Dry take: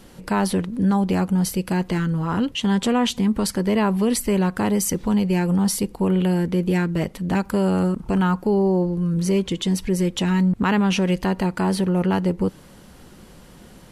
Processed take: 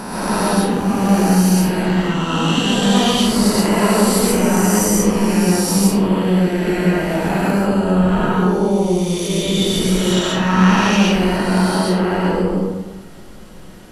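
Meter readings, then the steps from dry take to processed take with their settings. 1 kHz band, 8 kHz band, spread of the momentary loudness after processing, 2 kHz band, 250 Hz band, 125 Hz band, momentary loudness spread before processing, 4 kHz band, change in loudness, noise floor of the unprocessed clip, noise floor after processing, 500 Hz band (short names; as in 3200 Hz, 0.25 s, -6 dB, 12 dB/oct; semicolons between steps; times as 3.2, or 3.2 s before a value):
+7.5 dB, +8.5 dB, 5 LU, +8.0 dB, +5.0 dB, +4.0 dB, 4 LU, +9.5 dB, +5.5 dB, -46 dBFS, -36 dBFS, +5.5 dB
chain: spectral swells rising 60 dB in 2.31 s; digital reverb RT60 1.1 s, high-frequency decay 0.55×, pre-delay 85 ms, DRR -6 dB; gain -4.5 dB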